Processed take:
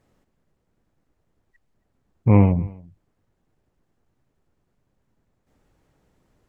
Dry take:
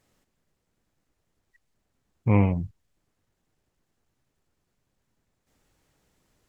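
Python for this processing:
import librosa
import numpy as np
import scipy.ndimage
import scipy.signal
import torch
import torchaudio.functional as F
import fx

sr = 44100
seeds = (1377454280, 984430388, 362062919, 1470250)

p1 = fx.high_shelf(x, sr, hz=2000.0, db=-12.0)
p2 = p1 + fx.echo_single(p1, sr, ms=273, db=-24.0, dry=0)
y = p2 * librosa.db_to_amplitude(6.0)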